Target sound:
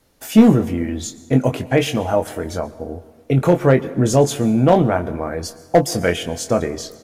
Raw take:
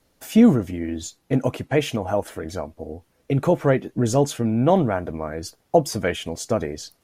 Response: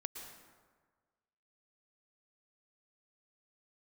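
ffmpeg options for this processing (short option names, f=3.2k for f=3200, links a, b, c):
-filter_complex "[0:a]asoftclip=type=hard:threshold=-8.5dB,asplit=2[a][b];[b]adelay=23,volume=-8dB[c];[a][c]amix=inputs=2:normalize=0,asplit=2[d][e];[1:a]atrim=start_sample=2205,asetrate=43218,aresample=44100,highshelf=f=8.3k:g=6[f];[e][f]afir=irnorm=-1:irlink=0,volume=-8.5dB[g];[d][g]amix=inputs=2:normalize=0,volume=2dB"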